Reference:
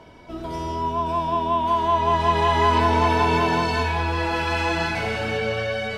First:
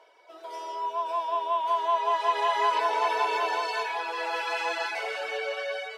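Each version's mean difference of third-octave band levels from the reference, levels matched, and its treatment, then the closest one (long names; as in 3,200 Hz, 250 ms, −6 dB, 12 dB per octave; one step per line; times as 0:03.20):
8.0 dB: reverb reduction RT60 0.5 s
Butterworth high-pass 440 Hz 36 dB per octave
automatic gain control gain up to 4 dB
level −8 dB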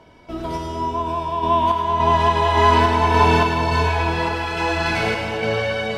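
2.0 dB: sample-and-hold tremolo
on a send: echo with a time of its own for lows and highs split 1,000 Hz, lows 459 ms, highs 103 ms, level −7 dB
on the sum: level +4.5 dB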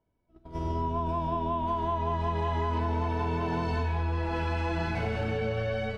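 5.0 dB: noise gate −27 dBFS, range −35 dB
spectral tilt −2.5 dB per octave
downward compressor 6 to 1, threshold −27 dBFS, peak gain reduction 14.5 dB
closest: second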